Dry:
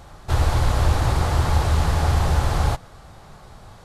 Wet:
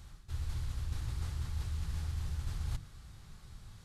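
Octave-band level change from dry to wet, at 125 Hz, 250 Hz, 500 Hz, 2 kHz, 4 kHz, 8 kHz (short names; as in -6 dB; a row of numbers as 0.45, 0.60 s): -17.5, -21.5, -31.5, -23.5, -19.5, -18.0 dB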